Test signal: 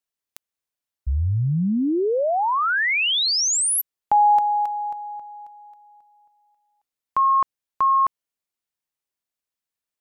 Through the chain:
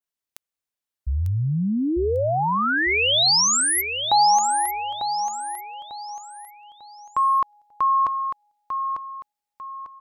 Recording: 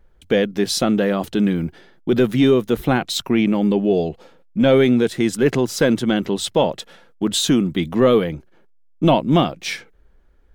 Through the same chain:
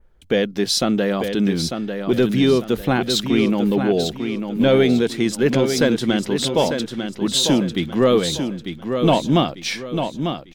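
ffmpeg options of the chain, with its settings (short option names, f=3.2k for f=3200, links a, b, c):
-filter_complex "[0:a]adynamicequalizer=threshold=0.0112:dfrequency=4600:dqfactor=1.2:tfrequency=4600:tqfactor=1.2:attack=5:release=100:ratio=0.375:range=2.5:mode=boostabove:tftype=bell,asplit=2[a][b];[b]aecho=0:1:897|1794|2691|3588:0.447|0.152|0.0516|0.0176[c];[a][c]amix=inputs=2:normalize=0,volume=-1.5dB"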